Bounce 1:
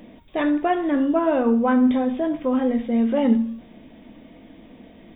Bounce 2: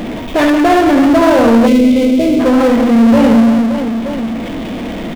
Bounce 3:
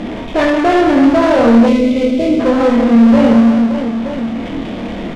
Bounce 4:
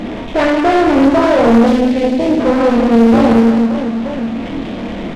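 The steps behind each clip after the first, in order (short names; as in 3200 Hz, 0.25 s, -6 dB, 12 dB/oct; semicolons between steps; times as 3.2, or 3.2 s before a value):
reverse bouncing-ball echo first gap 70 ms, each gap 1.5×, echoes 5; power-law curve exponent 0.5; spectral gain 1.67–2.4, 650–2000 Hz -18 dB; gain +4.5 dB
air absorption 66 m; on a send: flutter echo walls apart 4.4 m, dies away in 0.23 s; on the sum: gain -2 dB
Doppler distortion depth 0.65 ms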